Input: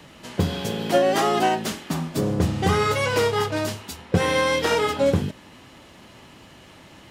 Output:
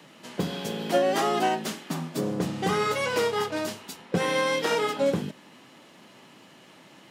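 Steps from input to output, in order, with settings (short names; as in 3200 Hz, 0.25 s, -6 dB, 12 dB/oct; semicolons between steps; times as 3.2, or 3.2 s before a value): HPF 150 Hz 24 dB/oct; gain -4 dB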